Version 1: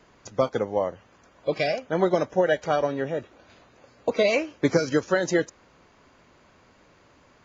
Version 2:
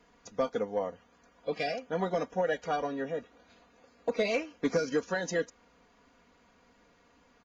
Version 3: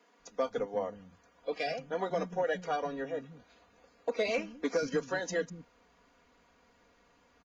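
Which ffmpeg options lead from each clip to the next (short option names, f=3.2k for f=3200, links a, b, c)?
-af "aecho=1:1:4.2:0.69,asoftclip=type=tanh:threshold=-9.5dB,volume=-8dB"
-filter_complex "[0:a]acrossover=split=220[a][b];[a]adelay=190[c];[c][b]amix=inputs=2:normalize=0,volume=-1.5dB"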